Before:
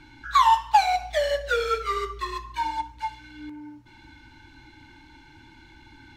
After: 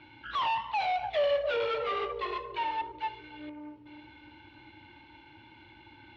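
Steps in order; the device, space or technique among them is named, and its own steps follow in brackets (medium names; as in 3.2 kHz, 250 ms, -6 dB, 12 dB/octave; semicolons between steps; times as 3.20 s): analogue delay pedal into a guitar amplifier (bucket-brigade echo 290 ms, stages 1024, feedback 52%, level -8 dB; valve stage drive 29 dB, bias 0.55; cabinet simulation 110–3500 Hz, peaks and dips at 160 Hz -9 dB, 260 Hz -7 dB, 570 Hz +5 dB, 1.6 kHz -6 dB, 2.8 kHz +4 dB); trim +1.5 dB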